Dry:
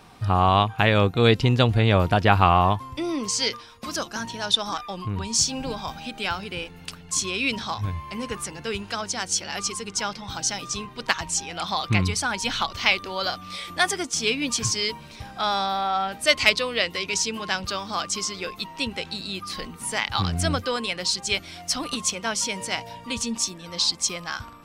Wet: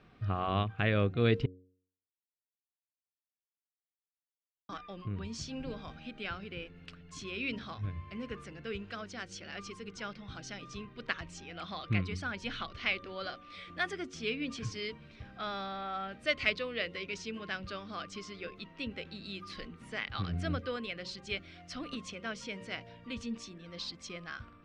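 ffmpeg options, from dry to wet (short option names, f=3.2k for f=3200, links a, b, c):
-filter_complex "[0:a]asettb=1/sr,asplit=3[a][b][c];[a]atrim=end=19.244[d];[b]atrim=start=19.24:end=19.65,asetpts=PTS-STARTPTS,afade=t=in:d=0.004:c=qsin,afade=t=out:st=0.406:d=0.004:c=qsin,highshelf=f=4.3k:g=9.5[e];[c]atrim=start=19.646[f];[d][e]acrossfade=d=0.004:c1=hsin:c2=qsin[g];[g][f]acrossfade=d=0.004:c1=qsin:c2=hsin,asplit=3[h][i][j];[h]atrim=end=1.46,asetpts=PTS-STARTPTS,afade=t=out:st=1.456:d=0.004:c=hsin[k];[i]atrim=start=1.46:end=4.69,asetpts=PTS-STARTPTS,volume=0[l];[j]atrim=start=4.69,asetpts=PTS-STARTPTS,afade=t=in:d=0.004:c=hsin[m];[k][l][m]concat=n=3:v=0:a=1,lowpass=2.5k,equalizer=f=890:w=2.9:g=-15,bandreject=f=92.03:t=h:w=4,bandreject=f=184.06:t=h:w=4,bandreject=f=276.09:t=h:w=4,bandreject=f=368.12:t=h:w=4,bandreject=f=460.15:t=h:w=4,bandreject=f=552.18:t=h:w=4,volume=-8dB"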